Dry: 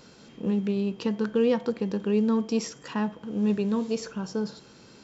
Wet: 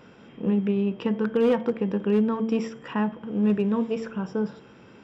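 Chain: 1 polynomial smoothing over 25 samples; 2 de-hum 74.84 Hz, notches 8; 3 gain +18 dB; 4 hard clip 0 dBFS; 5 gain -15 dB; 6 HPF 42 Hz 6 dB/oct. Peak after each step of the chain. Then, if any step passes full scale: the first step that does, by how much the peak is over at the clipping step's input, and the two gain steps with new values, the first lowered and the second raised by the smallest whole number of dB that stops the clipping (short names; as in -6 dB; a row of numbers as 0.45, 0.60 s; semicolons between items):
-14.5, -13.0, +5.0, 0.0, -15.0, -13.5 dBFS; step 3, 5.0 dB; step 3 +13 dB, step 5 -10 dB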